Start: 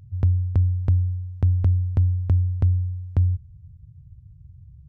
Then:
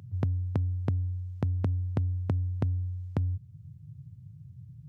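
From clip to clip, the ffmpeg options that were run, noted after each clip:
-af "alimiter=limit=-18.5dB:level=0:latency=1:release=444,highpass=f=120:w=0.5412,highpass=f=120:w=1.3066,volume=6dB"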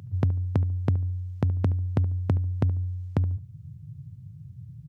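-filter_complex "[0:a]asplit=2[a][b];[b]adelay=72,lowpass=f=1.4k:p=1,volume=-15.5dB,asplit=2[c][d];[d]adelay=72,lowpass=f=1.4k:p=1,volume=0.27,asplit=2[e][f];[f]adelay=72,lowpass=f=1.4k:p=1,volume=0.27[g];[a][c][e][g]amix=inputs=4:normalize=0,volume=4.5dB"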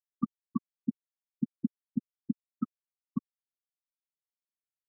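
-af "acrusher=samples=29:mix=1:aa=0.000001:lfo=1:lforange=17.4:lforate=2,highpass=f=200:w=0.5412,highpass=f=200:w=1.3066,equalizer=f=230:t=q:w=4:g=8,equalizer=f=360:t=q:w=4:g=-9,equalizer=f=540:t=q:w=4:g=3,equalizer=f=820:t=q:w=4:g=-7,equalizer=f=1.2k:t=q:w=4:g=9,lowpass=f=2.1k:w=0.5412,lowpass=f=2.1k:w=1.3066,afftfilt=real='re*gte(hypot(re,im),0.224)':imag='im*gte(hypot(re,im),0.224)':win_size=1024:overlap=0.75"

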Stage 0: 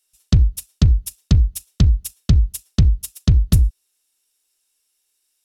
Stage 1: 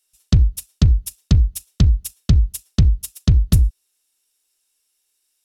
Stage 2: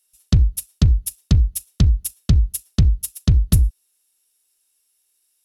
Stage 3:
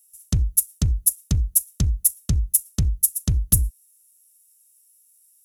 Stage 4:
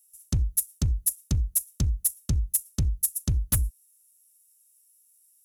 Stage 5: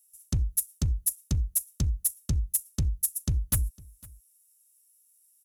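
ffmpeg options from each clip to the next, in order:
-af anull
-af "equalizer=f=11k:w=2.4:g=7.5,volume=-1dB"
-af "aexciter=amount=6.4:drive=3.3:freq=6k,volume=-6.5dB"
-af "volume=12.5dB,asoftclip=hard,volume=-12.5dB,volume=-4dB"
-af "aecho=1:1:505:0.0708,volume=-2dB"

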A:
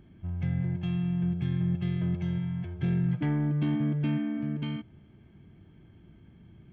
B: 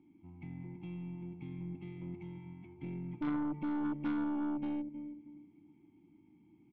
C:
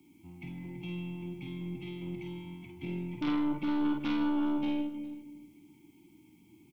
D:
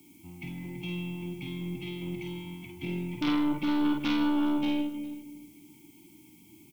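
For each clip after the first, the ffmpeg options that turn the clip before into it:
-filter_complex "[0:a]asplit=3[a][b][c];[a]bandpass=f=300:t=q:w=8,volume=0dB[d];[b]bandpass=f=870:t=q:w=8,volume=-6dB[e];[c]bandpass=f=2.24k:t=q:w=8,volume=-9dB[f];[d][e][f]amix=inputs=3:normalize=0,asplit=2[g][h];[h]adelay=316,lowpass=f=910:p=1,volume=-10.5dB,asplit=2[i][j];[j]adelay=316,lowpass=f=910:p=1,volume=0.35,asplit=2[k][l];[l]adelay=316,lowpass=f=910:p=1,volume=0.35,asplit=2[m][n];[n]adelay=316,lowpass=f=910:p=1,volume=0.35[o];[g][i][k][m][o]amix=inputs=5:normalize=0,aeval=exprs='0.0501*(cos(1*acos(clip(val(0)/0.0501,-1,1)))-cos(1*PI/2))+0.0112*(cos(3*acos(clip(val(0)/0.0501,-1,1)))-cos(3*PI/2))+0.01*(cos(5*acos(clip(val(0)/0.0501,-1,1)))-cos(5*PI/2))+0.00282*(cos(6*acos(clip(val(0)/0.0501,-1,1)))-cos(6*PI/2))':c=same,volume=1dB"
-filter_complex "[0:a]acrossover=split=160|410|1700[a][b][c][d];[d]aexciter=amount=2.4:drive=9.3:freq=2.3k[e];[a][b][c][e]amix=inputs=4:normalize=0,aecho=1:1:49|51|156|410:0.422|0.562|0.178|0.1,volume=3dB"
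-af "highshelf=f=3.7k:g=11.5,volume=3dB"

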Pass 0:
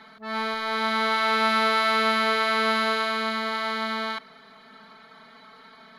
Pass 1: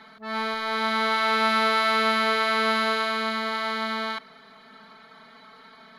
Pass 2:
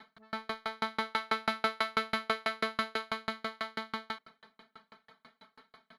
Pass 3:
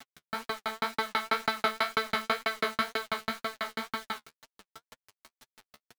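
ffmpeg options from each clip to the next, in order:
-af anull
-filter_complex "[0:a]asplit=2[a][b];[b]adelay=641.4,volume=-27dB,highshelf=f=4k:g=-14.4[c];[a][c]amix=inputs=2:normalize=0,aeval=exprs='val(0)*pow(10,-39*if(lt(mod(6.1*n/s,1),2*abs(6.1)/1000),1-mod(6.1*n/s,1)/(2*abs(6.1)/1000),(mod(6.1*n/s,1)-2*abs(6.1)/1000)/(1-2*abs(6.1)/1000))/20)':c=same,volume=-1.5dB"
-af "acrusher=bits=7:mix=0:aa=0.000001,flanger=delay=7:depth=6.6:regen=27:speed=2:shape=sinusoidal,volume=6.5dB"

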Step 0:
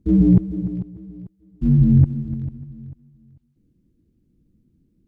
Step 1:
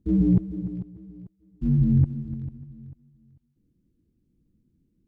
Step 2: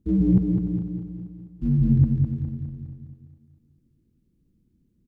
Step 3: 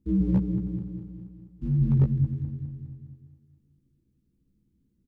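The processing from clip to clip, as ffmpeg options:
-af "bandreject=f=640:w=14,volume=-6dB"
-af "aecho=1:1:205|410|615|820|1025|1230:0.562|0.287|0.146|0.0746|0.038|0.0194"
-filter_complex "[0:a]aeval=exprs='0.299*(abs(mod(val(0)/0.299+3,4)-2)-1)':c=same,asuperstop=centerf=670:order=4:qfactor=5.1,asplit=2[a][b];[b]adelay=15,volume=-5.5dB[c];[a][c]amix=inputs=2:normalize=0,volume=-5dB"

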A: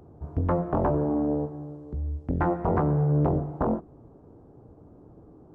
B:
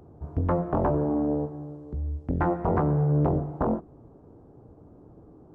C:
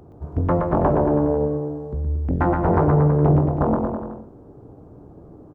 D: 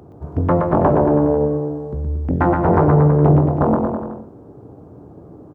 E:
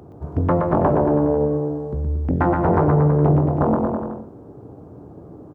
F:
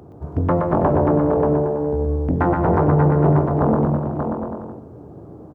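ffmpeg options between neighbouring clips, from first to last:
-af anull
-af "aecho=1:1:120|228|325.2|412.7|491.4:0.631|0.398|0.251|0.158|0.1,volume=4.5dB"
-af "highpass=75,volume=4dB"
-af "acompressor=threshold=-18dB:ratio=1.5"
-af "aecho=1:1:584:0.531"

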